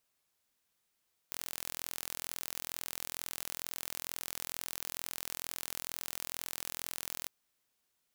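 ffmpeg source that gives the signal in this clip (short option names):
-f lavfi -i "aevalsrc='0.266*eq(mod(n,1045),0)':d=5.97:s=44100"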